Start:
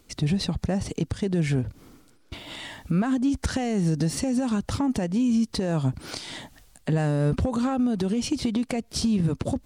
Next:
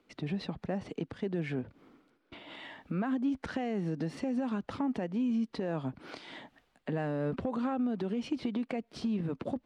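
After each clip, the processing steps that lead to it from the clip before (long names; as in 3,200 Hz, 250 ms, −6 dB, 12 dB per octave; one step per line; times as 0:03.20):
three-way crossover with the lows and the highs turned down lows −17 dB, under 180 Hz, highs −22 dB, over 3,400 Hz
level −6 dB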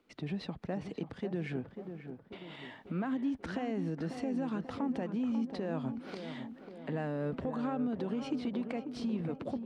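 tape delay 541 ms, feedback 63%, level −6.5 dB, low-pass 1,200 Hz
level −2.5 dB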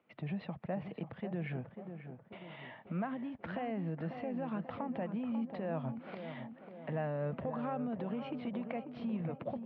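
loudspeaker in its box 110–2,800 Hz, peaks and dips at 130 Hz +4 dB, 280 Hz −9 dB, 400 Hz −7 dB, 630 Hz +4 dB, 1,500 Hz −3 dB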